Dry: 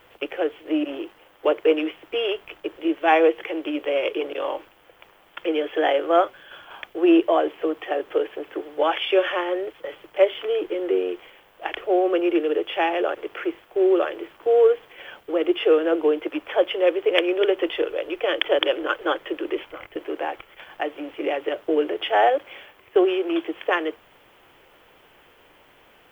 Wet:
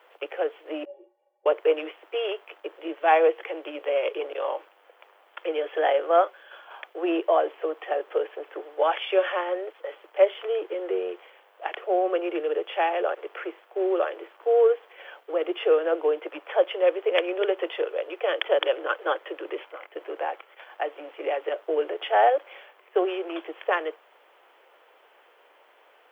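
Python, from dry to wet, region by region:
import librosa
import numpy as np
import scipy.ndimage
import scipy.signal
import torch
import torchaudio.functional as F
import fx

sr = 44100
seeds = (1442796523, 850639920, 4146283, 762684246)

y = fx.chain(x, sr, fx.lowpass(hz=1100.0, slope=12),
    fx.fixed_phaser(hz=540.0, stages=4),
    fx.stiff_resonator(f0_hz=170.0, decay_s=0.22, stiffness=0.03), at=(0.85, 1.46))
y = scipy.signal.sosfilt(scipy.signal.butter(4, 450.0, 'highpass', fs=sr, output='sos'), y)
y = fx.high_shelf(y, sr, hz=2600.0, db=-11.0)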